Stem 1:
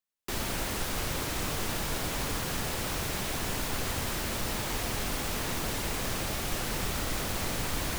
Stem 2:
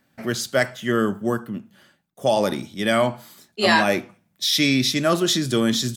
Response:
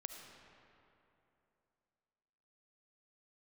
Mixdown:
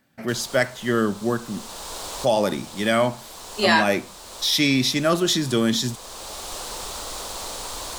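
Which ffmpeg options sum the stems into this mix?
-filter_complex "[0:a]equalizer=f=125:t=o:w=1:g=-10,equalizer=f=250:t=o:w=1:g=-3,equalizer=f=500:t=o:w=1:g=6,equalizer=f=1k:t=o:w=1:g=10,equalizer=f=2k:t=o:w=1:g=-5,equalizer=f=4k:t=o:w=1:g=9,equalizer=f=8k:t=o:w=1:g=10,volume=-6dB[a];[1:a]volume=-0.5dB,asplit=2[b][c];[c]apad=whole_len=352219[d];[a][d]sidechaincompress=threshold=-26dB:ratio=10:attack=9:release=872[e];[e][b]amix=inputs=2:normalize=0"

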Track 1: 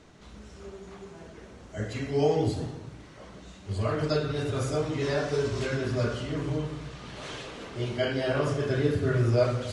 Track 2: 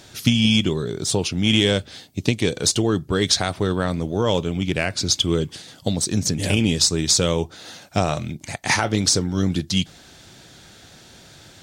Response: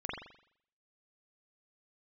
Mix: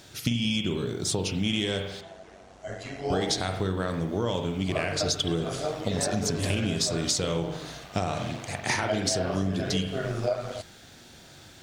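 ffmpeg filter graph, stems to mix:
-filter_complex "[0:a]equalizer=f=690:w=4.1:g=12.5,tremolo=f=96:d=0.571,lowshelf=f=470:g=-7.5,adelay=900,volume=1.5dB[a];[1:a]acrusher=bits=9:mix=0:aa=0.000001,volume=-7dB,asplit=3[b][c][d];[b]atrim=end=2.01,asetpts=PTS-STARTPTS,afade=t=out:st=2.006:d=0.004:c=hsin[e];[c]atrim=start=2.01:end=3.1,asetpts=PTS-STARTPTS,volume=0[f];[d]atrim=start=3.1,asetpts=PTS-STARTPTS,afade=t=in:d=0.004:c=hsin[g];[e][f][g]concat=n=3:v=0:a=1,asplit=2[h][i];[i]volume=-5dB[j];[2:a]atrim=start_sample=2205[k];[j][k]afir=irnorm=-1:irlink=0[l];[a][h][l]amix=inputs=3:normalize=0,acompressor=threshold=-23dB:ratio=6"

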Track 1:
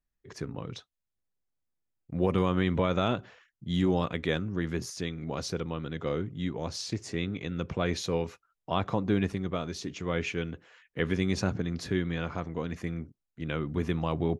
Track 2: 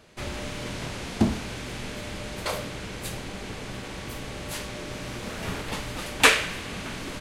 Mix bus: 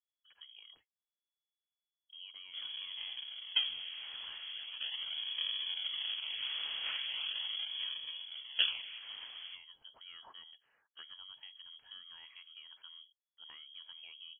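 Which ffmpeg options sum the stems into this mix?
-filter_complex "[0:a]acompressor=threshold=-33dB:ratio=3,volume=-16.5dB[a];[1:a]acrusher=samples=38:mix=1:aa=0.000001:lfo=1:lforange=60.8:lforate=0.4,lowpass=f=1.1k:p=1,adelay=2350,volume=-2.5dB,afade=t=in:st=4.87:d=0.4:silence=0.421697,afade=t=out:st=7.36:d=0.76:silence=0.298538[b];[a][b]amix=inputs=2:normalize=0,lowpass=f=2.9k:t=q:w=0.5098,lowpass=f=2.9k:t=q:w=0.6013,lowpass=f=2.9k:t=q:w=0.9,lowpass=f=2.9k:t=q:w=2.563,afreqshift=-3400"

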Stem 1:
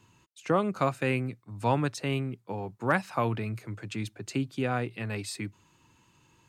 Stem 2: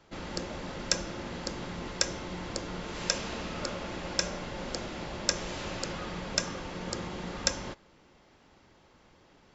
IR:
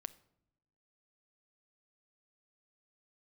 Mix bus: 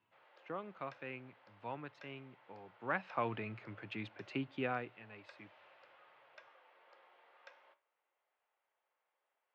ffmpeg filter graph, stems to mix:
-filter_complex "[0:a]aemphasis=mode=production:type=bsi,volume=-6.5dB,afade=t=in:st=2.63:d=0.79:silence=0.266073,afade=t=out:st=4.64:d=0.34:silence=0.237137,asplit=2[a][b];[b]volume=-10dB[c];[1:a]highpass=f=570:w=0.5412,highpass=f=570:w=1.3066,flanger=delay=7.8:depth=8.7:regen=77:speed=0.47:shape=triangular,volume=-20dB,asplit=2[d][e];[e]volume=-6dB[f];[2:a]atrim=start_sample=2205[g];[c][f]amix=inputs=2:normalize=0[h];[h][g]afir=irnorm=-1:irlink=0[i];[a][d][i]amix=inputs=3:normalize=0,lowpass=f=2.9k:w=0.5412,lowpass=f=2.9k:w=1.3066"

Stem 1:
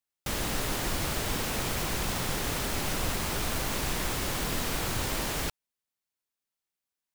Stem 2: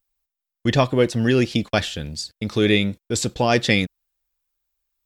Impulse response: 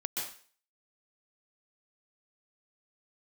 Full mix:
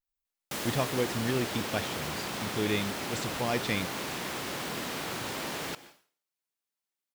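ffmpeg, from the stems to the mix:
-filter_complex "[0:a]highpass=170,adelay=250,volume=-3dB,asplit=2[a][b];[b]volume=-16dB[c];[1:a]volume=-12.5dB[d];[2:a]atrim=start_sample=2205[e];[c][e]afir=irnorm=-1:irlink=0[f];[a][d][f]amix=inputs=3:normalize=0,adynamicequalizer=threshold=0.00251:dfrequency=5700:dqfactor=0.7:tfrequency=5700:tqfactor=0.7:attack=5:release=100:ratio=0.375:range=3:mode=cutabove:tftype=highshelf"

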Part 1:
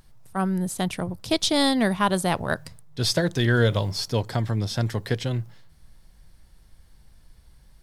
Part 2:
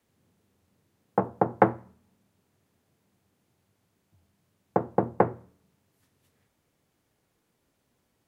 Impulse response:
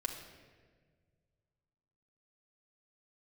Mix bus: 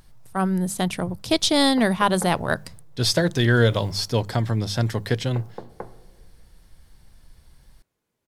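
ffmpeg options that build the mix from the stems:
-filter_complex "[0:a]bandreject=f=50:t=h:w=6,bandreject=f=100:t=h:w=6,bandreject=f=150:t=h:w=6,bandreject=f=200:t=h:w=6,volume=2.5dB[a];[1:a]acompressor=threshold=-34dB:ratio=2,adelay=600,volume=-7.5dB,asplit=2[b][c];[c]volume=-8.5dB[d];[2:a]atrim=start_sample=2205[e];[d][e]afir=irnorm=-1:irlink=0[f];[a][b][f]amix=inputs=3:normalize=0"

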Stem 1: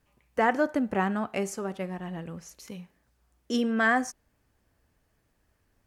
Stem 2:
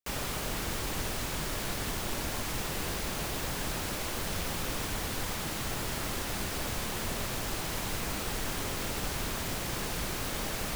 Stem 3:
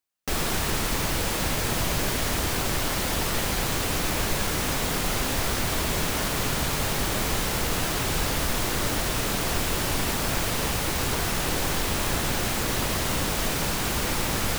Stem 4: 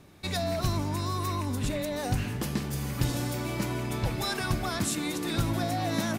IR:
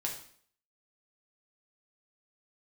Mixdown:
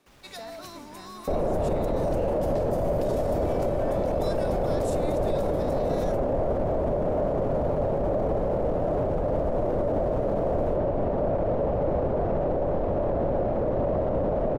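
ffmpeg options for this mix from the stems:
-filter_complex "[0:a]acompressor=threshold=-26dB:ratio=6,volume=-18dB[a];[1:a]lowpass=f=3.7k:p=1,asoftclip=type=hard:threshold=-36.5dB,volume=-16.5dB[b];[2:a]lowpass=f=590:t=q:w=4.9,adelay=1000,volume=3dB[c];[3:a]highpass=330,volume=-8.5dB[d];[a][b][c][d]amix=inputs=4:normalize=0,alimiter=limit=-18dB:level=0:latency=1:release=23"

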